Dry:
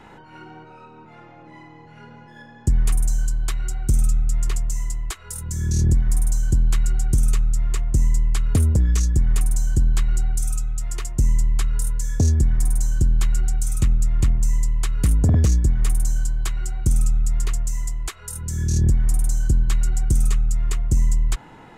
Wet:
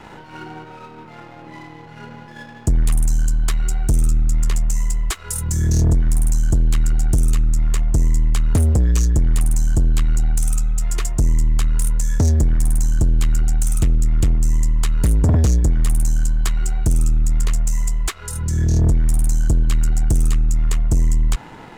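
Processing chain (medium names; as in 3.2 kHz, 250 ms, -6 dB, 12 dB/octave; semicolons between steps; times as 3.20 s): 18.09–18.81 s: treble shelf 9.7 kHz -> 6.1 kHz -11 dB; waveshaping leveller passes 2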